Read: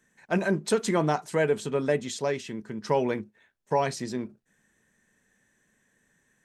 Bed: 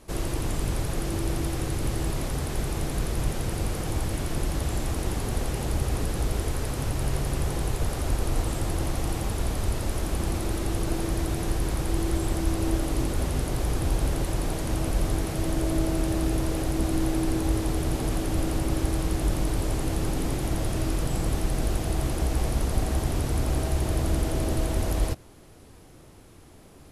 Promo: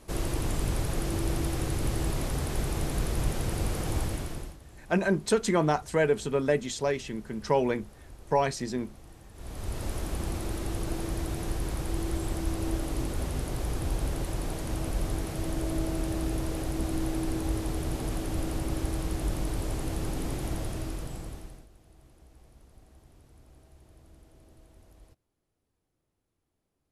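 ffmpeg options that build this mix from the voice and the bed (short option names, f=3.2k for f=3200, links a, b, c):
-filter_complex "[0:a]adelay=4600,volume=0dB[a];[1:a]volume=16dB,afade=t=out:st=4:d=0.57:silence=0.0891251,afade=t=in:st=9.33:d=0.52:silence=0.133352,afade=t=out:st=20.49:d=1.18:silence=0.0530884[b];[a][b]amix=inputs=2:normalize=0"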